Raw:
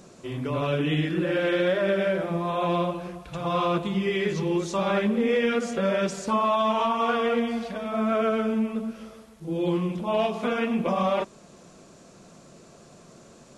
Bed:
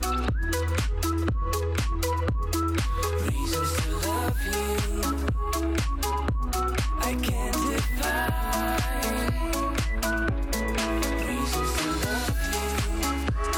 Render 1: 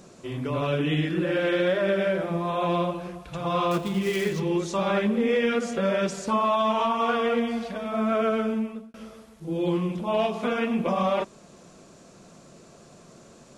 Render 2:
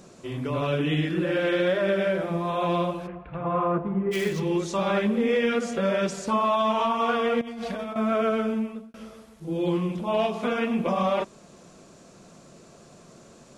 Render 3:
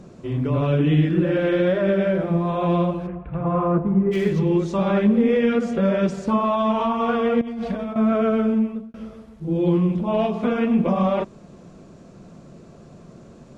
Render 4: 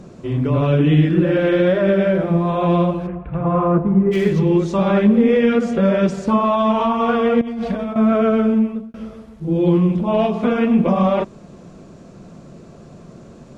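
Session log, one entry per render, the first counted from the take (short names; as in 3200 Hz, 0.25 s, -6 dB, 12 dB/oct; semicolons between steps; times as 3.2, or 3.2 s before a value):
3.71–4.4 switching dead time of 0.086 ms; 8.32–8.94 fade out equal-power
3.06–4.11 LPF 2700 Hz -> 1300 Hz 24 dB/oct; 7.41–7.96 negative-ratio compressor -34 dBFS
LPF 3000 Hz 6 dB/oct; low shelf 340 Hz +11 dB
gain +4 dB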